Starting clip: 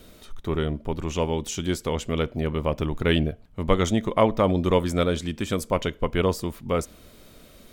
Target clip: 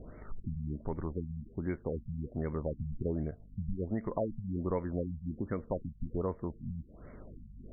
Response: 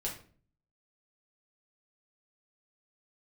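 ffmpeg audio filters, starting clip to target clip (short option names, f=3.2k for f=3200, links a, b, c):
-af "aeval=exprs='val(0)+0.00282*(sin(2*PI*50*n/s)+sin(2*PI*2*50*n/s)/2+sin(2*PI*3*50*n/s)/3+sin(2*PI*4*50*n/s)/4+sin(2*PI*5*50*n/s)/5)':c=same,acompressor=threshold=-35dB:ratio=2.5,afftfilt=real='re*lt(b*sr/1024,210*pow(2300/210,0.5+0.5*sin(2*PI*1.3*pts/sr)))':imag='im*lt(b*sr/1024,210*pow(2300/210,0.5+0.5*sin(2*PI*1.3*pts/sr)))':win_size=1024:overlap=0.75"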